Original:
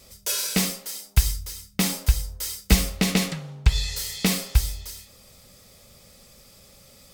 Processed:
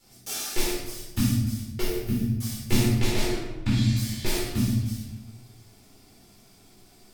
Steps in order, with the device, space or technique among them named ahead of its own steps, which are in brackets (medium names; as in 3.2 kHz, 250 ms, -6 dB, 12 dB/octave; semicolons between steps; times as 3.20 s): 1.81–2.35 s: graphic EQ 125/250/500/1000/4000/8000 Hz -6/+8/-5/-12/-6/-10 dB; alien voice (ring modulator 170 Hz; flange 0.29 Hz, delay 5 ms, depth 9.4 ms, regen -73%); simulated room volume 380 m³, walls mixed, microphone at 4.2 m; trim -7 dB